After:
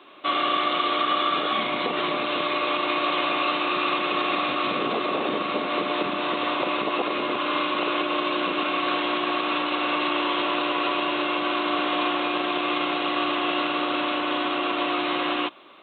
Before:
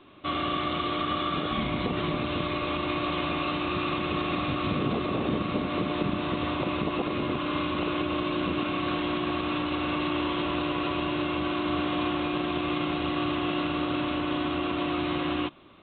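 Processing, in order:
high-pass filter 450 Hz 12 dB per octave
level +7 dB

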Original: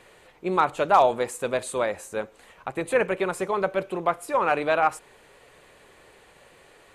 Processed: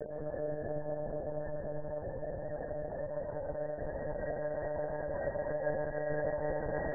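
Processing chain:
sign of each sample alone
elliptic low-pass filter 1,900 Hz
noise gate −27 dBFS, range −26 dB
mains-hum notches 60/120/180/240/300/360/420/480 Hz
transient designer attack −11 dB, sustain +6 dB
extreme stretch with random phases 27×, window 0.50 s, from 0:01.65
notch comb filter 180 Hz
spectral peaks only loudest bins 16
amplitude modulation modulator 35 Hz, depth 35%
convolution reverb RT60 1.9 s, pre-delay 117 ms, DRR −4.5 dB
one-pitch LPC vocoder at 8 kHz 150 Hz
level +2 dB

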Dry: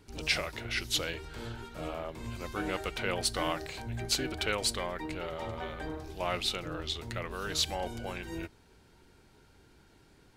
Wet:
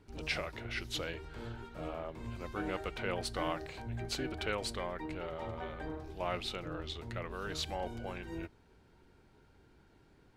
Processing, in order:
high-shelf EQ 3,500 Hz −11 dB
level −2.5 dB

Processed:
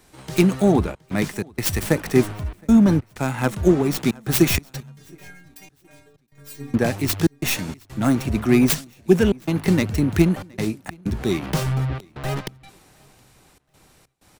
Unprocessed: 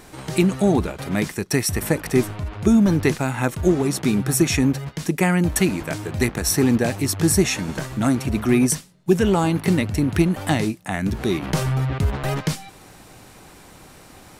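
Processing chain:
stylus tracing distortion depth 0.32 ms
0:04.80–0:06.74: stiff-string resonator 140 Hz, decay 0.72 s, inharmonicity 0.008
gate pattern "xxxxxx.xx." 95 BPM −60 dB
repeating echo 719 ms, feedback 42%, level −23.5 dB
multiband upward and downward expander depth 40%

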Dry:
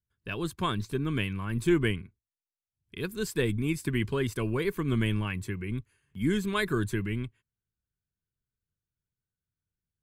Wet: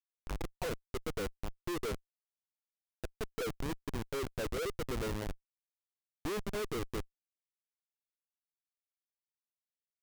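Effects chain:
envelope filter 490–1,600 Hz, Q 11, down, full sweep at −25.5 dBFS
comparator with hysteresis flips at −48 dBFS
level +14 dB

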